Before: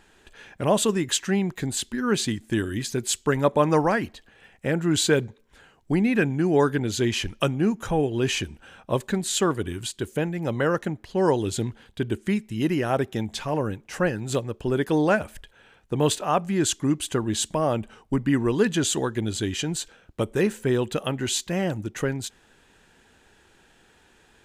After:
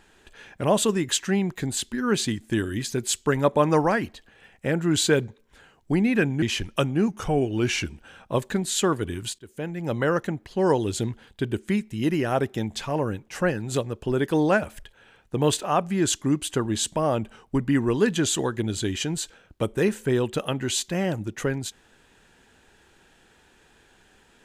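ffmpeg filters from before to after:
-filter_complex "[0:a]asplit=5[a][b][c][d][e];[a]atrim=end=6.422[f];[b]atrim=start=7.058:end=7.724[g];[c]atrim=start=7.72:end=8.48,asetpts=PTS-STARTPTS,asetrate=41013,aresample=44100[h];[d]atrim=start=8.476:end=9.97,asetpts=PTS-STARTPTS,afade=t=out:st=1.49:d=0.004:c=hsin:silence=0.0749894[i];[e]atrim=start=9.97,asetpts=PTS-STARTPTS,afade=t=in:d=0.53:silence=0.0749894[j];[f][g]acrossfade=d=0.004:c1=hsin:c2=hsin[k];[k][h]acrossfade=d=0.004:c1=hsin:c2=hsin[l];[i][j]concat=n=2:v=0:a=1[m];[l][m]acrossfade=d=0.004:c1=hsin:c2=hsin"

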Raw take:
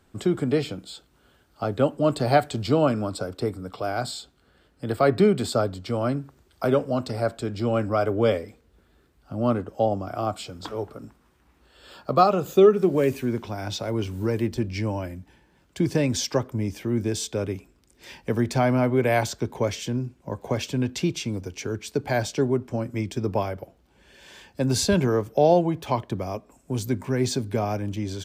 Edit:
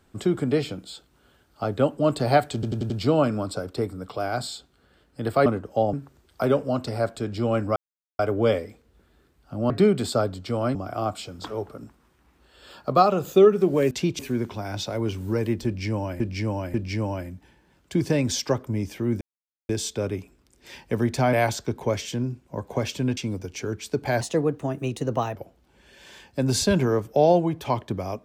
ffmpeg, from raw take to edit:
-filter_complex "[0:a]asplit=19[a][b][c][d][e][f][g][h][i][j][k][l][m][n][o][p][q][r][s];[a]atrim=end=2.632[t];[b]atrim=start=2.538:end=2.632[u];[c]atrim=start=2.538:end=2.632[v];[d]atrim=start=2.538:end=2.632[w];[e]atrim=start=2.538:end=5.102[x];[f]atrim=start=9.488:end=9.962[y];[g]atrim=start=6.148:end=7.98,asetpts=PTS-STARTPTS,afade=t=out:st=1.828:d=0.004:c=hsin,apad=pad_dur=0.43[z];[h]atrim=start=7.98:end=9.492,asetpts=PTS-STARTPTS,afade=t=in:d=0.004:c=hsin[aa];[i]atrim=start=5.098:end=6.152[ab];[j]atrim=start=9.958:end=13.122[ac];[k]atrim=start=20.908:end=21.192[ad];[l]atrim=start=13.118:end=15.132[ae];[m]atrim=start=14.588:end=15.132[af];[n]atrim=start=14.588:end=17.06,asetpts=PTS-STARTPTS,afade=t=out:st=2.468:d=0.004:c=hsin,apad=pad_dur=0.48[ag];[o]atrim=start=17.06:end=18.702,asetpts=PTS-STARTPTS,afade=t=in:d=0.004:c=hsin[ah];[p]atrim=start=19.068:end=20.912[ai];[q]atrim=start=21.188:end=22.234[aj];[r]atrim=start=22.23:end=23.57,asetpts=PTS-STARTPTS,asetrate=51597,aresample=44100[ak];[s]atrim=start=23.566[al];[t][u]acrossfade=d=0.004:c1=hsin:c2=hsin[am];[am][v]acrossfade=d=0.004:c1=hsin:c2=hsin[an];[an][w]acrossfade=d=0.004:c1=hsin:c2=hsin[ao];[ao][x]acrossfade=d=0.004:c1=hsin:c2=hsin[ap];[ap][y]acrossfade=d=0.004:c1=hsin:c2=hsin[aq];[z][aa]concat=n=2:v=0:a=1[ar];[aq][ar]acrossfade=d=0.004:c1=hsin:c2=hsin[as];[as][ab]acrossfade=d=0.004:c1=hsin:c2=hsin[at];[at][ac]acrossfade=d=0.004:c1=hsin:c2=hsin[au];[au][ad]acrossfade=d=0.004:c1=hsin:c2=hsin[av];[av][ae]acrossfade=d=0.004:c1=hsin:c2=hsin[aw];[aw][af]acrossfade=d=0.004:c1=hsin:c2=hsin[ax];[ag][ah]concat=n=2:v=0:a=1[ay];[ax][ay]acrossfade=d=0.004:c1=hsin:c2=hsin[az];[az][ai]acrossfade=d=0.004:c1=hsin:c2=hsin[ba];[ba][aj]acrossfade=d=0.004:c1=hsin:c2=hsin[bb];[bb][ak]acrossfade=d=0.004:c1=hsin:c2=hsin[bc];[bc][al]acrossfade=d=0.004:c1=hsin:c2=hsin"

